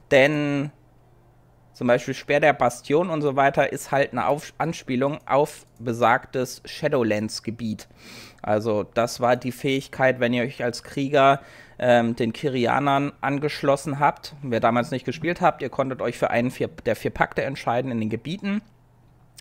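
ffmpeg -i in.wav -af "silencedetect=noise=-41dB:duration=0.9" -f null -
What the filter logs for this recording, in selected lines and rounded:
silence_start: 0.70
silence_end: 1.77 | silence_duration: 1.06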